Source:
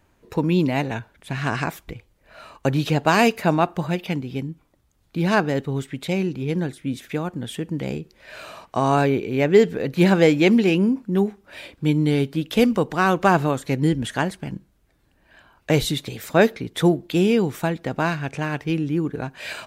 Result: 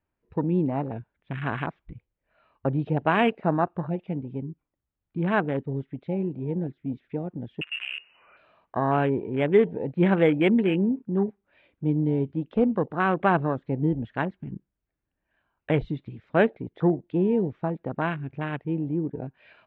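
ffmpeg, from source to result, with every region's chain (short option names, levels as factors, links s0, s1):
-filter_complex "[0:a]asettb=1/sr,asplit=3[s0][s1][s2];[s0]atrim=end=7.614[s3];[s1]atrim=start=7.61:end=8.37,asetpts=PTS-STARTPTS,afade=t=in:d=0.004:c=qsin,afade=t=out:st=0.756:d=0.004:c=qsin,aeval=exprs='val(0)+0.5*0.0251*sgn(val(0))':c=same,lowpass=f=2600:t=q:w=0.5098,lowpass=f=2600:t=q:w=0.6013,lowpass=f=2600:t=q:w=0.9,lowpass=f=2600:t=q:w=2.563,afreqshift=-3000[s4];[s2]atrim=start=8.366[s5];[s3][s4]acrossfade=d=0.004:c1=hsin:c2=qsin[s6];[s6][s5]acrossfade=d=0.004:c1=qsin:c2=hsin,lowpass=f=3000:w=0.5412,lowpass=f=3000:w=1.3066,afwtdn=0.0447,volume=0.596"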